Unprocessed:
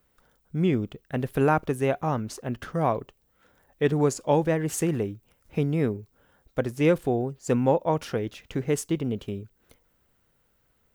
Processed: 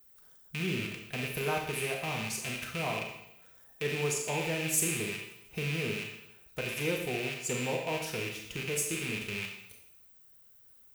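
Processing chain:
loose part that buzzes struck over −40 dBFS, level −19 dBFS
in parallel at +2 dB: downward compressor, threshold −34 dBFS, peak gain reduction 17 dB
on the sum: first-order pre-emphasis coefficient 0.8
notch comb filter 280 Hz
four-comb reverb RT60 0.8 s, combs from 28 ms, DRR 1.5 dB

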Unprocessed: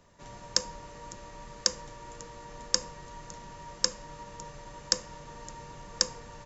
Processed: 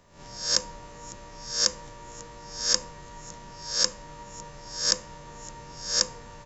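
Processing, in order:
peak hold with a rise ahead of every peak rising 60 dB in 0.51 s

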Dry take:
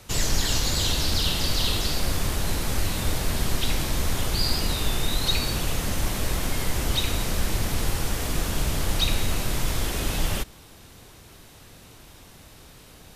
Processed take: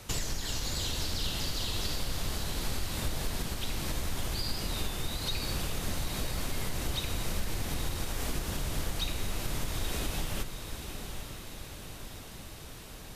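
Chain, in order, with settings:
downward compressor 10 to 1, threshold −29 dBFS, peak gain reduction 13.5 dB
feedback delay with all-pass diffusion 890 ms, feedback 55%, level −8 dB

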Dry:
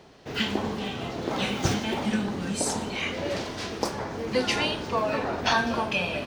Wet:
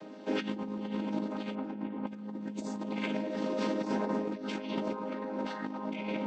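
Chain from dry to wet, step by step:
channel vocoder with a chord as carrier major triad, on G#3
0:01.55–0:02.07: low-pass filter 1,900 Hz 12 dB per octave
delay with a band-pass on its return 227 ms, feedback 57%, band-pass 450 Hz, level −3 dB
compressor whose output falls as the input rises −36 dBFS, ratio −1

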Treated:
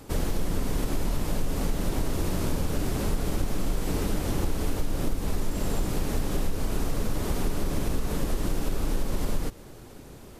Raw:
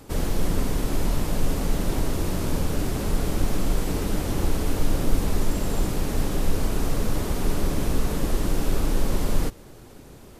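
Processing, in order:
downward compressor, threshold −21 dBFS, peak gain reduction 9.5 dB

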